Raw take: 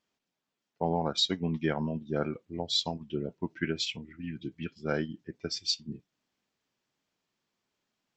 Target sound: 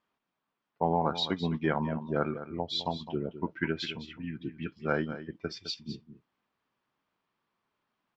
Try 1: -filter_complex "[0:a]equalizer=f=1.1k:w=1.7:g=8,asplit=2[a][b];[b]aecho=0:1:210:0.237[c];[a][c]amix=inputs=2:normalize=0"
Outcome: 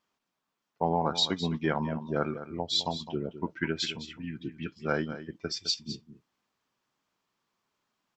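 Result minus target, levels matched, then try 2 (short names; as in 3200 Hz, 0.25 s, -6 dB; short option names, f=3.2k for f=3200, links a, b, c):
4000 Hz band +4.0 dB
-filter_complex "[0:a]lowpass=3.2k,equalizer=f=1.1k:w=1.7:g=8,asplit=2[a][b];[b]aecho=0:1:210:0.237[c];[a][c]amix=inputs=2:normalize=0"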